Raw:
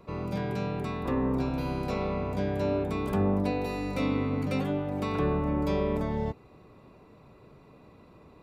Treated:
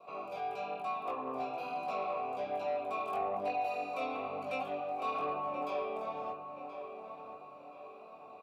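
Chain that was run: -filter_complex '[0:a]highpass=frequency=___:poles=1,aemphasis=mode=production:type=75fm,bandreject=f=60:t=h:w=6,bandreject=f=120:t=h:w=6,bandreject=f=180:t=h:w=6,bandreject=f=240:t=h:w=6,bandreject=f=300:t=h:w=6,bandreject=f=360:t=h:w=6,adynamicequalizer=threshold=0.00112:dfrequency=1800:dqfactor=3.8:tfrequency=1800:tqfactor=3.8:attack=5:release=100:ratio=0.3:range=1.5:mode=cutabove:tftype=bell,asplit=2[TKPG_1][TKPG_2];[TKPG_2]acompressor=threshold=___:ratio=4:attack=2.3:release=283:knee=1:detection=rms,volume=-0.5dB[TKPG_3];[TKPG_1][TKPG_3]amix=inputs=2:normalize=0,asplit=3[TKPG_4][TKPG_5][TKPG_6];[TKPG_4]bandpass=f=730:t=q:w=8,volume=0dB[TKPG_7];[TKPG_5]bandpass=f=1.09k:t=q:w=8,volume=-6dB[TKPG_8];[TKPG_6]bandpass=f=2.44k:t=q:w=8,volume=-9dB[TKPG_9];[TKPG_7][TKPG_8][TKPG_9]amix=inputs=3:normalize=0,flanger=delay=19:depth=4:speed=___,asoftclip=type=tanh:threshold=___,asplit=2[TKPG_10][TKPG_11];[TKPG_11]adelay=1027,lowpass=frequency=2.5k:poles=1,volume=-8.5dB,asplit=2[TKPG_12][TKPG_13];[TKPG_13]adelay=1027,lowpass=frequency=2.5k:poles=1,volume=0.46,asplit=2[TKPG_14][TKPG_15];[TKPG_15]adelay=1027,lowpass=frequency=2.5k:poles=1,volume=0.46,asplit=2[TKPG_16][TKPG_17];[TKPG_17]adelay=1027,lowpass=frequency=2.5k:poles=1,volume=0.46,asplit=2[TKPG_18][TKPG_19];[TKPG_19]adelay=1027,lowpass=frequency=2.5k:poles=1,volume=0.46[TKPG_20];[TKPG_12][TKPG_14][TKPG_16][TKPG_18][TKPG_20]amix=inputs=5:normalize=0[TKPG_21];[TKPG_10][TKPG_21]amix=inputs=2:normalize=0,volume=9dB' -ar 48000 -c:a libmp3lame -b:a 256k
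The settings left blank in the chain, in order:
210, -46dB, 1.1, -34.5dB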